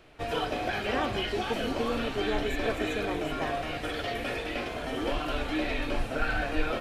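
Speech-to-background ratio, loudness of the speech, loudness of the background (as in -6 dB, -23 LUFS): -3.0 dB, -35.0 LUFS, -32.0 LUFS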